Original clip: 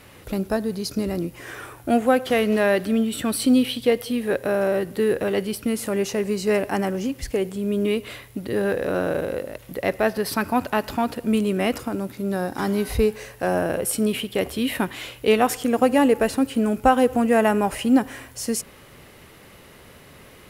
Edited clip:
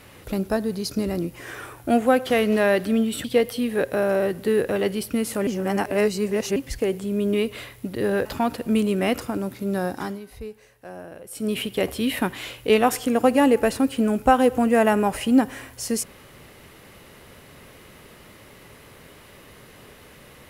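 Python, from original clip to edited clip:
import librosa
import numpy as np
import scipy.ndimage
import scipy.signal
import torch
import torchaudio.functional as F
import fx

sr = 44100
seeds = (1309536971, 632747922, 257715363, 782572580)

y = fx.edit(x, sr, fx.cut(start_s=3.24, length_s=0.52),
    fx.reverse_span(start_s=5.99, length_s=1.09),
    fx.cut(start_s=8.77, length_s=2.06),
    fx.fade_down_up(start_s=12.48, length_s=1.7, db=-16.5, fade_s=0.3), tone=tone)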